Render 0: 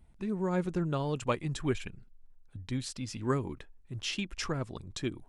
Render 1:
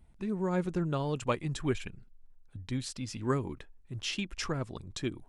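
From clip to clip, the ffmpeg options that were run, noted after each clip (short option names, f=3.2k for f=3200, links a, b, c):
-af anull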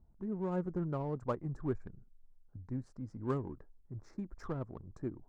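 -af "asuperstop=centerf=3000:order=4:qfactor=0.59,adynamicsmooth=sensitivity=7.5:basefreq=1.6k,volume=-4.5dB"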